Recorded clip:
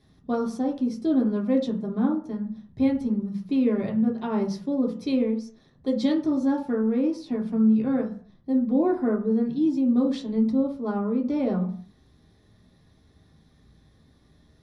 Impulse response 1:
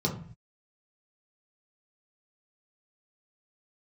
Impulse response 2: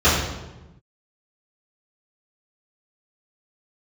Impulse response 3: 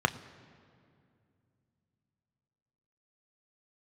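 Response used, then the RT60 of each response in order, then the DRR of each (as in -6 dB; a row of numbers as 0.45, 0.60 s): 1; 0.50, 1.1, 2.4 s; -2.0, -13.0, 9.0 dB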